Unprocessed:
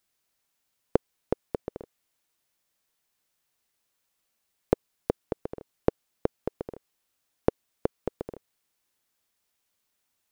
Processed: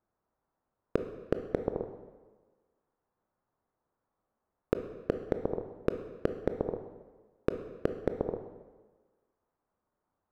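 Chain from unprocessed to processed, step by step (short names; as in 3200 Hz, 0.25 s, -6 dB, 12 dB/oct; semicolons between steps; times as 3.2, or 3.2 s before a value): LPF 1200 Hz 24 dB/oct; compressor 5:1, threshold -25 dBFS, peak gain reduction 9.5 dB; hard clip -17 dBFS, distortion -9 dB; on a send: reverb RT60 1.3 s, pre-delay 19 ms, DRR 7 dB; on the sum: gain +4.5 dB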